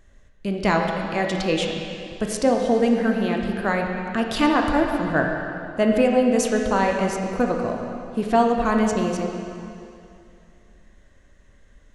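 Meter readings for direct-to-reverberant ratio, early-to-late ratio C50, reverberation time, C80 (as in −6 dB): 1.5 dB, 3.0 dB, 2.6 s, 4.0 dB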